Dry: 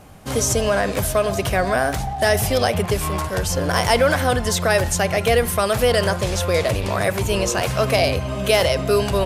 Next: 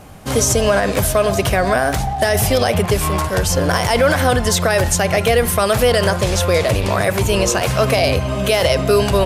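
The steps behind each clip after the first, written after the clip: limiter -10 dBFS, peak gain reduction 7 dB; gain +5 dB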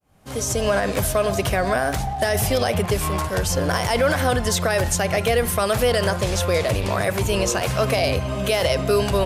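opening faded in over 0.72 s; gain -5 dB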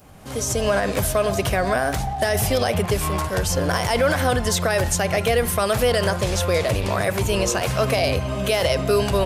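upward compressor, threshold -34 dBFS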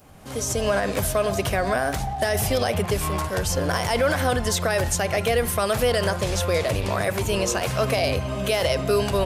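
notches 60/120/180 Hz; gain -2 dB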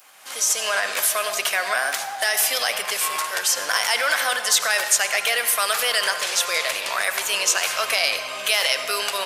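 HPF 1400 Hz 12 dB/oct; on a send at -10 dB: reverb RT60 1.8 s, pre-delay 73 ms; on the sum: gain +8 dB

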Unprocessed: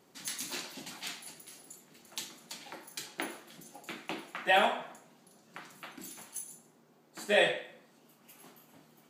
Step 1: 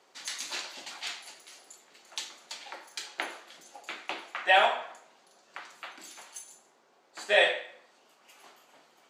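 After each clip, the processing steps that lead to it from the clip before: three-band isolator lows -22 dB, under 440 Hz, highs -18 dB, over 7900 Hz; gain +4.5 dB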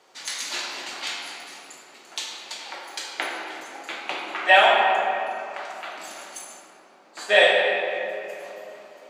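shoebox room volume 150 m³, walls hard, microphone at 0.51 m; gain +4.5 dB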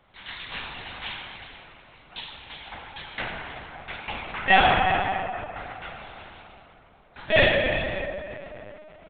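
vibrato 1.8 Hz 28 cents; echo 0.364 s -15 dB; LPC vocoder at 8 kHz pitch kept; gain -2.5 dB

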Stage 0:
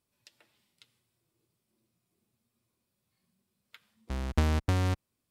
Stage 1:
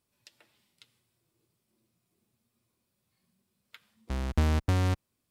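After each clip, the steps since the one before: soft clip -14 dBFS, distortion -22 dB; gain +2 dB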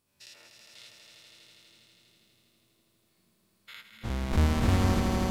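spectral dilation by 0.12 s; swelling echo 81 ms, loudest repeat 5, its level -7.5 dB; gain -1.5 dB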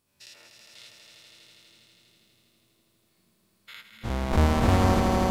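dynamic EQ 720 Hz, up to +7 dB, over -44 dBFS, Q 0.73; gain +2 dB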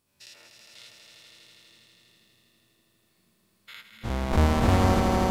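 narrowing echo 0.446 s, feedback 59%, band-pass 1500 Hz, level -11.5 dB

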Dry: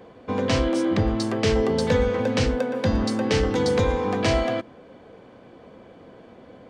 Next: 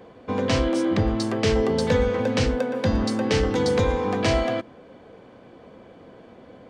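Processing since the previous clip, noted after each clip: nothing audible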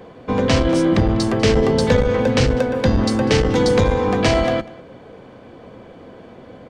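octaver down 1 oct, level -6 dB; echo 0.197 s -21 dB; core saturation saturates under 130 Hz; gain +6 dB

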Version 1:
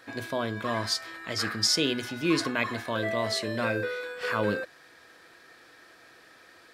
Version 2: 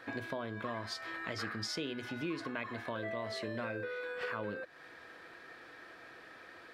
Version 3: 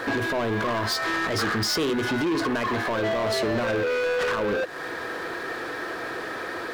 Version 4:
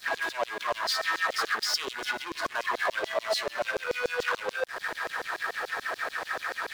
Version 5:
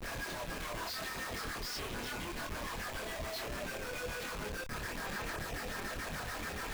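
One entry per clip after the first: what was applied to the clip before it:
tone controls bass -1 dB, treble -12 dB; compressor 5:1, threshold -39 dBFS, peak gain reduction 16.5 dB; gain +2 dB
fifteen-band EQ 400 Hz +6 dB, 1000 Hz +3 dB, 2500 Hz -4 dB; limiter -29.5 dBFS, peak gain reduction 9 dB; sample leveller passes 3; gain +9 dB
compressor, threshold -27 dBFS, peak gain reduction 4.5 dB; LFO high-pass saw down 6.9 Hz 480–5800 Hz; crossover distortion -45 dBFS
rattling part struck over -53 dBFS, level -24 dBFS; Schmitt trigger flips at -39.5 dBFS; chorus voices 4, 0.71 Hz, delay 26 ms, depth 2.6 ms; gain -6 dB

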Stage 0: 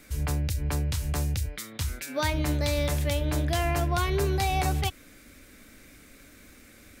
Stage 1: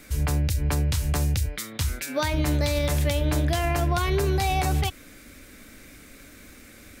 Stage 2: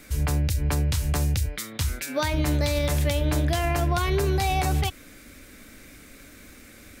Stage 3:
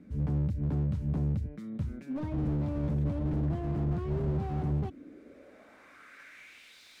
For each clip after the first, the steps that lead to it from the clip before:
limiter -19.5 dBFS, peak gain reduction 6 dB; gain +4.5 dB
nothing audible
band-pass sweep 200 Hz -> 4000 Hz, 4.76–6.8; slew limiter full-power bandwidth 4.4 Hz; gain +5.5 dB

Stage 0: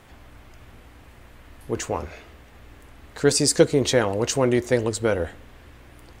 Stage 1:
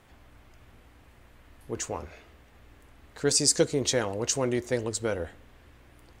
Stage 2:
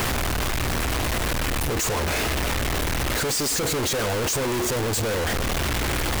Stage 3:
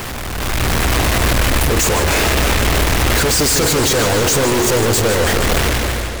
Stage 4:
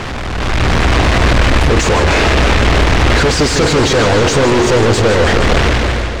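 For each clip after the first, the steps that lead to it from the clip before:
dynamic EQ 6500 Hz, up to +8 dB, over -40 dBFS, Q 0.95; gain -7.5 dB
infinite clipping; gain +7.5 dB
ending faded out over 0.60 s; AGC gain up to 10.5 dB; warbling echo 0.154 s, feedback 76%, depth 123 cents, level -9.5 dB; gain -2 dB
air absorption 120 m; gain +5 dB

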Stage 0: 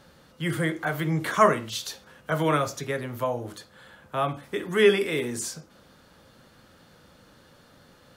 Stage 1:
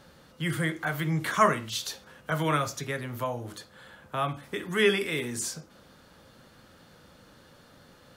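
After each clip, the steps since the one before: dynamic EQ 470 Hz, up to -6 dB, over -38 dBFS, Q 0.72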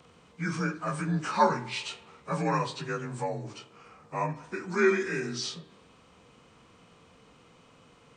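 inharmonic rescaling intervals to 87%; spring tank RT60 1.3 s, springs 31/44 ms, chirp 45 ms, DRR 17.5 dB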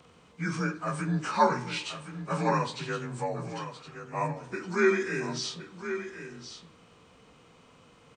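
echo 1.067 s -10.5 dB

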